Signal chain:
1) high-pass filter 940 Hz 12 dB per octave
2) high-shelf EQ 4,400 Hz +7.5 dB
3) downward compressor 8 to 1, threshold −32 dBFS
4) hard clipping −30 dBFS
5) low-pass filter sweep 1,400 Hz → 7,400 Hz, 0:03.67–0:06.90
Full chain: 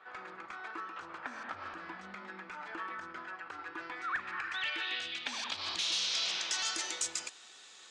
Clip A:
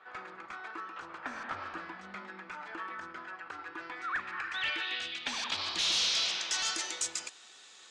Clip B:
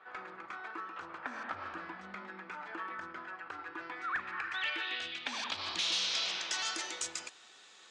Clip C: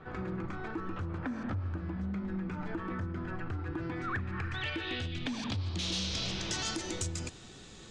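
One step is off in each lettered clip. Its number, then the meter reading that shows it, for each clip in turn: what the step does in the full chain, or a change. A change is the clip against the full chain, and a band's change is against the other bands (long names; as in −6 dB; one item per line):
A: 3, average gain reduction 1.5 dB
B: 2, 8 kHz band −4.0 dB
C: 1, 125 Hz band +30.0 dB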